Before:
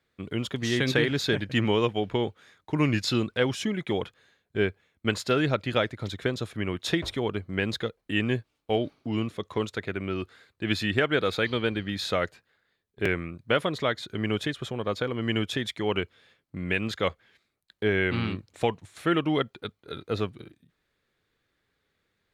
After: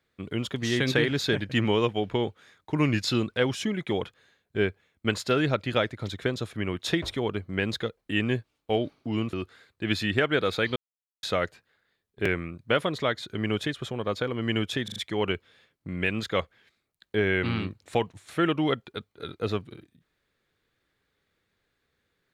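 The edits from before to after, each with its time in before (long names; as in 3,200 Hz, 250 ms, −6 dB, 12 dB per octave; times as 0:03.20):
0:09.33–0:10.13: remove
0:11.56–0:12.03: silence
0:15.64: stutter 0.04 s, 4 plays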